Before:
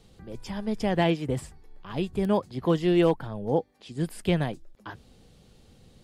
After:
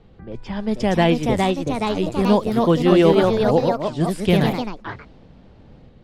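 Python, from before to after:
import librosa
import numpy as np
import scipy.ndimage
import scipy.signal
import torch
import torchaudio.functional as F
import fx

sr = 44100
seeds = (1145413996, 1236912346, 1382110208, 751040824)

y = fx.robotise(x, sr, hz=93.6, at=(1.33, 2.19))
y = fx.echo_pitch(y, sr, ms=518, semitones=2, count=3, db_per_echo=-3.0)
y = fx.env_lowpass(y, sr, base_hz=1900.0, full_db=-22.5)
y = y * librosa.db_to_amplitude(6.5)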